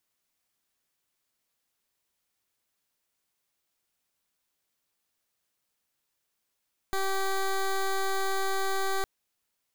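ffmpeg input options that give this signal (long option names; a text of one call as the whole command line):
ffmpeg -f lavfi -i "aevalsrc='0.0422*(2*lt(mod(387*t,1),0.14)-1)':duration=2.11:sample_rate=44100" out.wav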